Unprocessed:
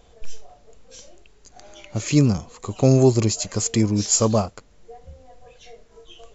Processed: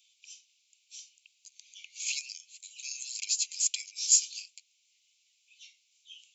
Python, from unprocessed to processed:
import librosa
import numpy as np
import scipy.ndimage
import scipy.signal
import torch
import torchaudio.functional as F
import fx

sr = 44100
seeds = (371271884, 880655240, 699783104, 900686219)

y = scipy.signal.sosfilt(scipy.signal.butter(16, 2300.0, 'highpass', fs=sr, output='sos'), x)
y = y * librosa.db_to_amplitude(-2.5)